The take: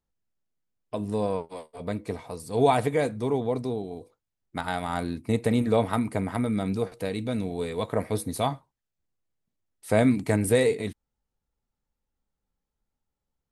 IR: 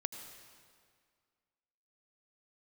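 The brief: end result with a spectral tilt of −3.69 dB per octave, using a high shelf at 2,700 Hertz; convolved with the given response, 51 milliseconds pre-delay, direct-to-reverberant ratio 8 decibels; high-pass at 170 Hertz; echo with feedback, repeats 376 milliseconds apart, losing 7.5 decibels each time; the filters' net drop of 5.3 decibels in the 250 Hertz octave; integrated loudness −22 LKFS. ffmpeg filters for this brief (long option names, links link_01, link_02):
-filter_complex "[0:a]highpass=170,equalizer=frequency=250:width_type=o:gain=-5,highshelf=frequency=2700:gain=8,aecho=1:1:376|752|1128|1504|1880:0.422|0.177|0.0744|0.0312|0.0131,asplit=2[link_01][link_02];[1:a]atrim=start_sample=2205,adelay=51[link_03];[link_02][link_03]afir=irnorm=-1:irlink=0,volume=-8dB[link_04];[link_01][link_04]amix=inputs=2:normalize=0,volume=5.5dB"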